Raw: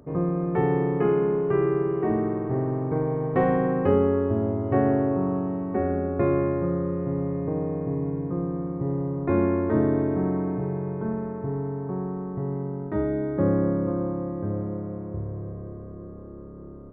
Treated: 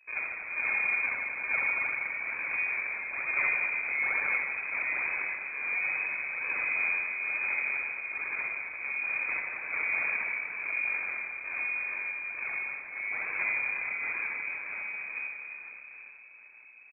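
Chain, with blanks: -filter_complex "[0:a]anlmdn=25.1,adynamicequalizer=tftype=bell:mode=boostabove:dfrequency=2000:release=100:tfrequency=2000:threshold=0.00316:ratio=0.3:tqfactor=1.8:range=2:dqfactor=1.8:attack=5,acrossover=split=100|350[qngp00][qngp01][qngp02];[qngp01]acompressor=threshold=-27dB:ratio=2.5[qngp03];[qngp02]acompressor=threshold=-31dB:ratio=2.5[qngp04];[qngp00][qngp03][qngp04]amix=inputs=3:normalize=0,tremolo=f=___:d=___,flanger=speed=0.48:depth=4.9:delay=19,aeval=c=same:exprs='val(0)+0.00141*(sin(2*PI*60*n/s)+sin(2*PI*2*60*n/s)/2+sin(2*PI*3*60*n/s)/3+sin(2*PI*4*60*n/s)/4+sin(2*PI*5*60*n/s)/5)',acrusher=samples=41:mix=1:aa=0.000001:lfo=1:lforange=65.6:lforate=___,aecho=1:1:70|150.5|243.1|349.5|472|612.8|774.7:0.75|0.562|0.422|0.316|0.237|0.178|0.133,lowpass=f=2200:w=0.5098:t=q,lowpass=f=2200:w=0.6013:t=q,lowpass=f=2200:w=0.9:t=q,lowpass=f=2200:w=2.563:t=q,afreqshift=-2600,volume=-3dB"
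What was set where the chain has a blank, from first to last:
1.2, 0.62, 2.2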